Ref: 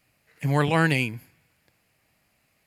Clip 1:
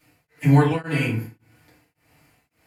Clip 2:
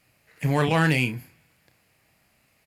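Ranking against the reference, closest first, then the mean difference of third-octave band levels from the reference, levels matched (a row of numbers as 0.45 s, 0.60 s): 2, 1; 2.0 dB, 7.5 dB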